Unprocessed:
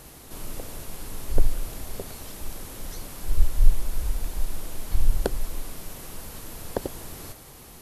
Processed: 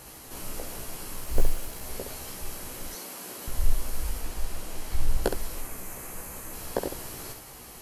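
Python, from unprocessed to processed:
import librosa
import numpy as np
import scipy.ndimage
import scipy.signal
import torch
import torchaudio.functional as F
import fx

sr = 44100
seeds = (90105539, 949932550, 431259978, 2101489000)

y = fx.law_mismatch(x, sr, coded='A', at=(1.13, 1.84))
y = fx.highpass(y, sr, hz=190.0, slope=24, at=(2.88, 3.48))
y = fx.high_shelf(y, sr, hz=11000.0, db=-7.0, at=(4.2, 5.24))
y = fx.spec_box(y, sr, start_s=5.6, length_s=0.93, low_hz=2700.0, high_hz=6000.0, gain_db=-7)
y = fx.low_shelf(y, sr, hz=320.0, db=-5.5)
y = fx.notch(y, sr, hz=3600.0, q=13.0)
y = fx.room_early_taps(y, sr, ms=(16, 67), db=(-3.5, -6.5))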